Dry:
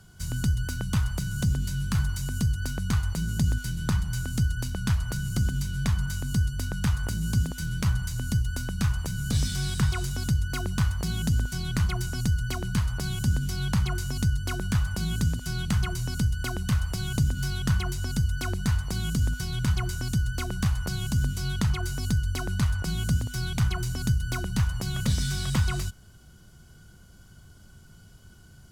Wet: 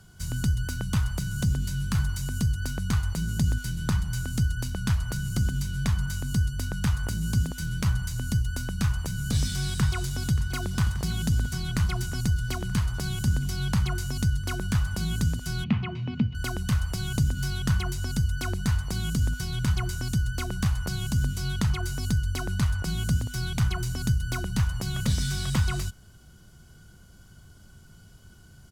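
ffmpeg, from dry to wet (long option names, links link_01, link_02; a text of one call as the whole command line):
ffmpeg -i in.wav -filter_complex "[0:a]asplit=2[link_01][link_02];[link_02]afade=type=in:start_time=9.46:duration=0.01,afade=type=out:start_time=10.47:duration=0.01,aecho=0:1:580|1160|1740|2320|2900|3480|4060|4640|5220|5800|6380|6960:0.199526|0.159621|0.127697|0.102157|0.0817259|0.0653808|0.0523046|0.0418437|0.0334749|0.02678|0.021424|0.0171392[link_03];[link_01][link_03]amix=inputs=2:normalize=0,asettb=1/sr,asplit=3[link_04][link_05][link_06];[link_04]atrim=end=15.644[link_07];[link_05]atrim=start=15.64:end=16.35,asetpts=PTS-STARTPTS,afade=type=in:duration=0.004:curve=qsin,afade=type=out:start_time=0.706:duration=0.004:curve=qsin,highpass=frequency=100:width=0.5412,highpass=frequency=100:width=1.3066,equalizer=frequency=230:width_type=q:width=4:gain=10,equalizer=frequency=1500:width_type=q:width=4:gain=-9,equalizer=frequency=2500:width_type=q:width=4:gain=6,lowpass=frequency=3000:width=0.5412,lowpass=frequency=3000:width=1.3066[link_08];[link_06]atrim=start=16.346[link_09];[link_07][link_08]acrossfade=duration=0.004:curve1=hsin:curve2=qsin[link_10];[link_10][link_09]acrossfade=duration=0.004:curve1=qsin:curve2=hsin" out.wav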